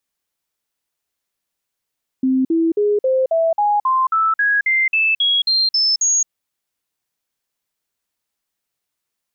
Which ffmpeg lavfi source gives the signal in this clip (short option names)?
-f lavfi -i "aevalsrc='0.224*clip(min(mod(t,0.27),0.22-mod(t,0.27))/0.005,0,1)*sin(2*PI*261*pow(2,floor(t/0.27)/3)*mod(t,0.27))':d=4.05:s=44100"